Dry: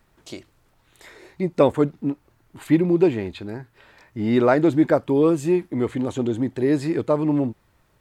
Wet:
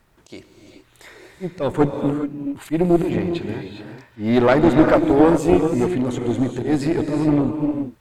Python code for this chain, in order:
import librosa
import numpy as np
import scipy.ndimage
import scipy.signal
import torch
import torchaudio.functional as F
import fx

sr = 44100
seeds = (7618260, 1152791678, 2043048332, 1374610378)

y = fx.auto_swell(x, sr, attack_ms=121.0)
y = fx.rev_gated(y, sr, seeds[0], gate_ms=440, shape='rising', drr_db=5.0)
y = fx.cheby_harmonics(y, sr, harmonics=(6,), levels_db=(-17,), full_scale_db=-0.5)
y = y * 10.0 ** (2.5 / 20.0)